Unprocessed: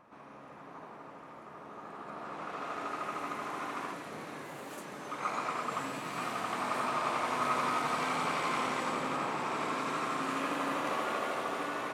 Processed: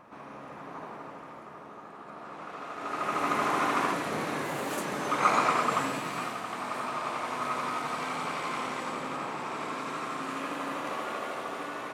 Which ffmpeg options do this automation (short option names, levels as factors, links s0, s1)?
-af "volume=8.41,afade=t=out:st=0.92:d=1:silence=0.421697,afade=t=in:st=2.77:d=0.63:silence=0.251189,afade=t=out:st=5.32:d=1.08:silence=0.251189"